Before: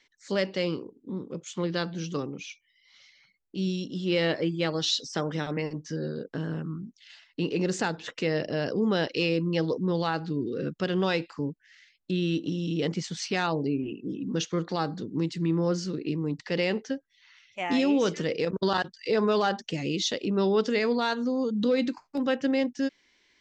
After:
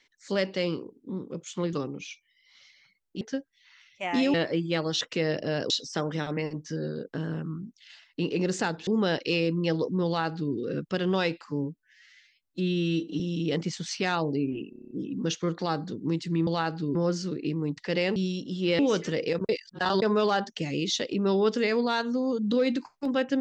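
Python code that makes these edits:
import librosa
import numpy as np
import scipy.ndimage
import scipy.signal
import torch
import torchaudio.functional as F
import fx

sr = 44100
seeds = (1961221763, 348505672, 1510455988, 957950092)

y = fx.edit(x, sr, fx.cut(start_s=1.73, length_s=0.39),
    fx.swap(start_s=3.6, length_s=0.63, other_s=16.78, other_length_s=1.13),
    fx.move(start_s=8.07, length_s=0.69, to_s=4.9),
    fx.duplicate(start_s=9.95, length_s=0.48, to_s=15.57),
    fx.stretch_span(start_s=11.35, length_s=1.16, factor=1.5),
    fx.stutter(start_s=14.01, slice_s=0.03, count=8),
    fx.reverse_span(start_s=18.61, length_s=0.53), tone=tone)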